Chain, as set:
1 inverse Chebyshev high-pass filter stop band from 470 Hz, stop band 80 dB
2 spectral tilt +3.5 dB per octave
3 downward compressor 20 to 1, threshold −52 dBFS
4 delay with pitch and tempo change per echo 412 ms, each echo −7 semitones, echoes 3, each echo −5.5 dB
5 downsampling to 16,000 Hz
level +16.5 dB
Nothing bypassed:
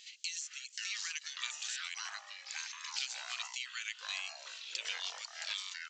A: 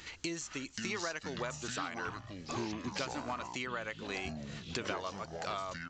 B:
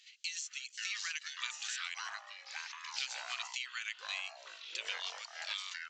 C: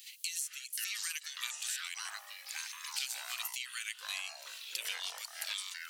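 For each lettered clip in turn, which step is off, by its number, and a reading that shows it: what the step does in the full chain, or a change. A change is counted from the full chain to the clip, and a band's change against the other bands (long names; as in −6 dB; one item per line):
1, 500 Hz band +23.5 dB
2, 8 kHz band −4.5 dB
5, 8 kHz band +3.0 dB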